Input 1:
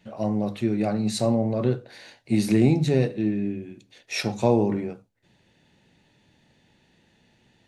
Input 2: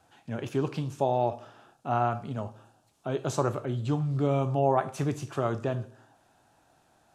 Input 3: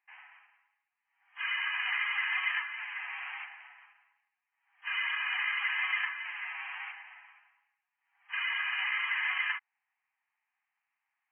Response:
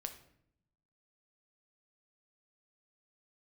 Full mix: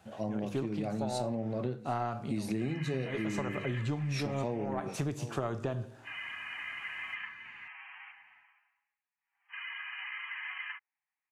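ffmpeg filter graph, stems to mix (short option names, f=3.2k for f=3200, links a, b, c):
-filter_complex "[0:a]volume=-7dB,asplit=3[a][b][c];[b]volume=-20dB[d];[1:a]aeval=exprs='0.251*(cos(1*acos(clip(val(0)/0.251,-1,1)))-cos(1*PI/2))+0.0398*(cos(2*acos(clip(val(0)/0.251,-1,1)))-cos(2*PI/2))':c=same,volume=1dB[e];[2:a]adelay=1200,volume=-9dB[f];[c]apad=whole_len=315291[g];[e][g]sidechaincompress=threshold=-35dB:ratio=8:attack=11:release=225[h];[d]aecho=0:1:756:1[i];[a][h][f][i]amix=inputs=4:normalize=0,acompressor=threshold=-30dB:ratio=6"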